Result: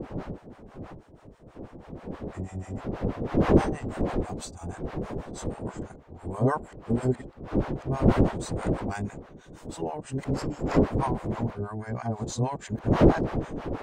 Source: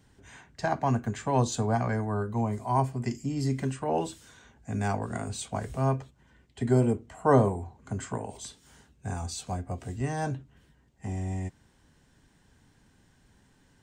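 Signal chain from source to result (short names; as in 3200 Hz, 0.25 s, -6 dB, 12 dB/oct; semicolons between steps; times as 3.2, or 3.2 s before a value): whole clip reversed; wind noise 410 Hz -25 dBFS; harmonic tremolo 6.2 Hz, depth 100%, crossover 680 Hz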